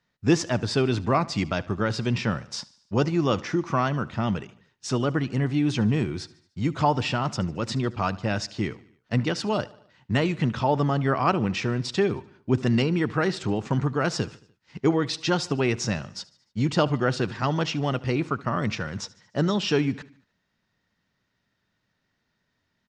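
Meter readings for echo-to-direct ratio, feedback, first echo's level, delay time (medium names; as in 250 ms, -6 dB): -19.5 dB, 55%, -21.0 dB, 74 ms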